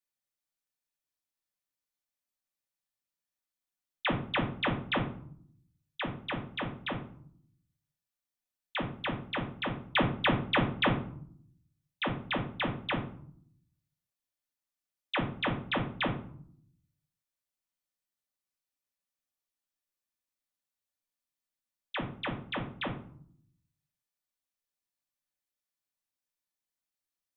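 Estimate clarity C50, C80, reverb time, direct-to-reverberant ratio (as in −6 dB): 9.0 dB, 13.5 dB, 0.60 s, −1.0 dB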